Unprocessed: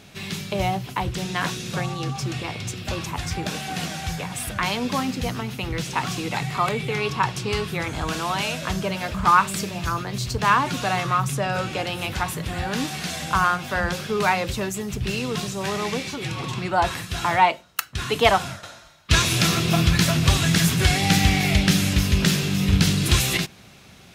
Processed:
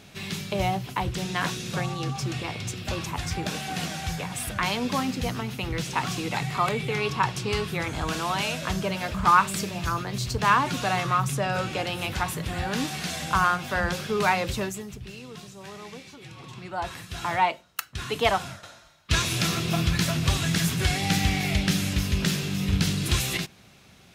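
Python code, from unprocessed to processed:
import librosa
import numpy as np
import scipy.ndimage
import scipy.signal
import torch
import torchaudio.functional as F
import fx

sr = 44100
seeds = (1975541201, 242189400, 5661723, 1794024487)

y = fx.gain(x, sr, db=fx.line((14.62, -2.0), (15.09, -15.0), (16.31, -15.0), (17.34, -5.5)))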